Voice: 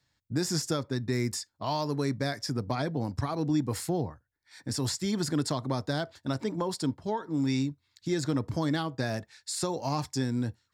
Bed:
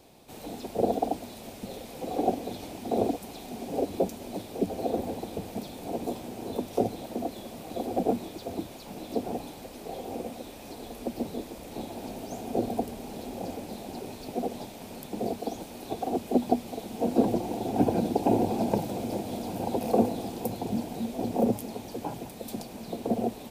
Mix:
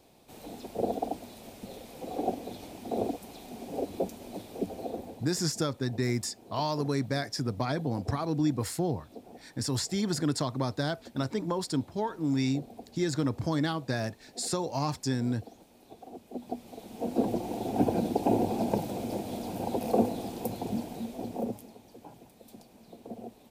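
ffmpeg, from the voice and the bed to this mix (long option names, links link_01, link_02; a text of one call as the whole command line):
ffmpeg -i stem1.wav -i stem2.wav -filter_complex "[0:a]adelay=4900,volume=0dB[link_01];[1:a]volume=10dB,afade=type=out:start_time=4.6:duration=0.78:silence=0.251189,afade=type=in:start_time=16.31:duration=1.28:silence=0.188365,afade=type=out:start_time=20.67:duration=1.1:silence=0.237137[link_02];[link_01][link_02]amix=inputs=2:normalize=0" out.wav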